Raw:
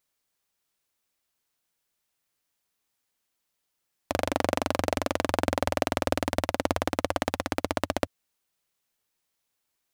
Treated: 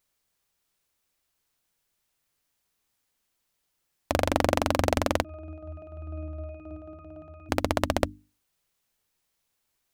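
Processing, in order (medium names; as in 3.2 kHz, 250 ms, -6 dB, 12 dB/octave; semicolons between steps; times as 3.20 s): bass shelf 120 Hz +8.5 dB; hum notches 50/100/150/200/250/300 Hz; 5.24–7.49 s: pitch-class resonator D#, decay 0.78 s; trim +2 dB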